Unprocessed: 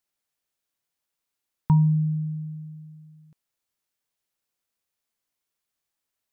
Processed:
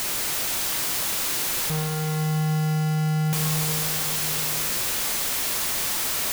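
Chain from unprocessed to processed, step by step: infinite clipping; plate-style reverb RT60 4.8 s, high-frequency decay 0.9×, DRR 3.5 dB; gain +4 dB

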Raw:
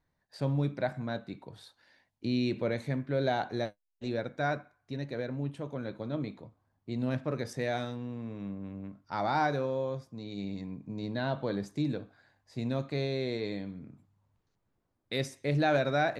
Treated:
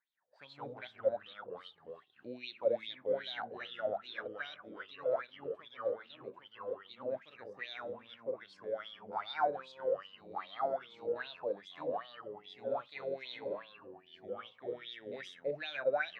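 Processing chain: echoes that change speed 0.115 s, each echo -2 st, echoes 3; wah 2.5 Hz 490–3700 Hz, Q 9.5; gain +6.5 dB

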